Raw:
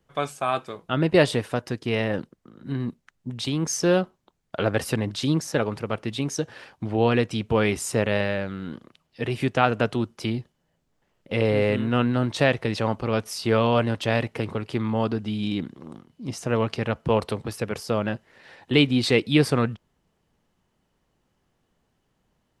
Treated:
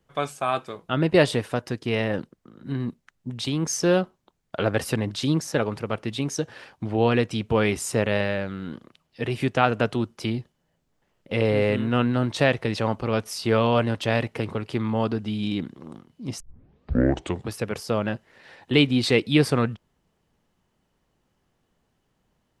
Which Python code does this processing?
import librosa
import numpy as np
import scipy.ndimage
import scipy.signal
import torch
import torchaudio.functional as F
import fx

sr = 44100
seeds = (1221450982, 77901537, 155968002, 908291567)

y = fx.edit(x, sr, fx.tape_start(start_s=16.4, length_s=1.1), tone=tone)